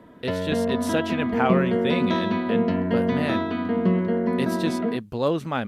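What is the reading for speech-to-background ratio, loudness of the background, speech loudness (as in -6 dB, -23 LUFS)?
-4.0 dB, -24.5 LUFS, -28.5 LUFS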